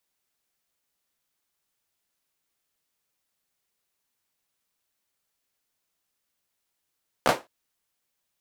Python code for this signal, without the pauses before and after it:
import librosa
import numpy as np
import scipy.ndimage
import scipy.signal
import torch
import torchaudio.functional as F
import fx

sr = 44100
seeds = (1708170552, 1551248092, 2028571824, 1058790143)

y = fx.drum_clap(sr, seeds[0], length_s=0.21, bursts=3, spacing_ms=14, hz=570.0, decay_s=0.22)